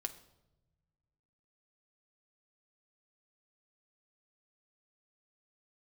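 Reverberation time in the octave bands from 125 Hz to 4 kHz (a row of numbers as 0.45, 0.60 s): 2.2, 1.7, 1.2, 0.85, 0.65, 0.65 s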